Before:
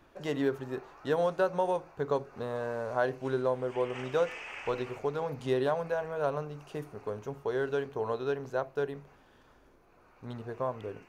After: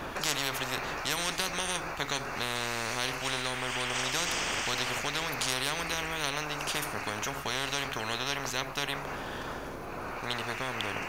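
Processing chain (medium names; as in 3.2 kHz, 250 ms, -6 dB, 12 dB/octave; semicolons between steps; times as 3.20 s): spectrum-flattening compressor 10:1; trim +5 dB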